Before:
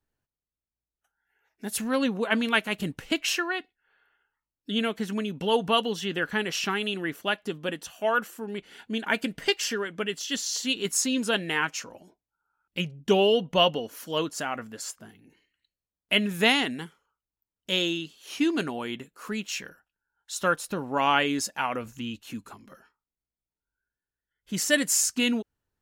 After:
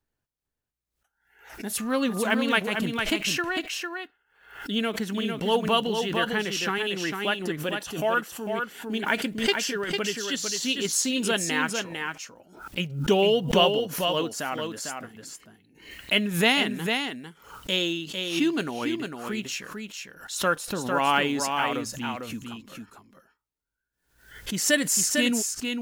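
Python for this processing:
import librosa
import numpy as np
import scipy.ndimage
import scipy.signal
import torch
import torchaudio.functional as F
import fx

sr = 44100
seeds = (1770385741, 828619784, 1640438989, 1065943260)

y = fx.block_float(x, sr, bits=7)
y = y + 10.0 ** (-5.5 / 20.0) * np.pad(y, (int(451 * sr / 1000.0), 0))[:len(y)]
y = fx.dmg_tone(y, sr, hz=1200.0, level_db=-43.0, at=(1.77, 2.24), fade=0.02)
y = fx.pre_swell(y, sr, db_per_s=97.0)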